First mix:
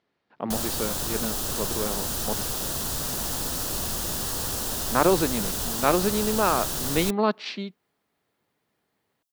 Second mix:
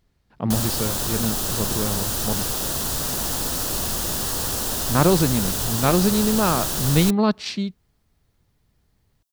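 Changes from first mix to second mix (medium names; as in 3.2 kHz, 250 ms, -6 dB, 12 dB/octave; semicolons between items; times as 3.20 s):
speech: remove band-pass 320–3400 Hz; background +4.0 dB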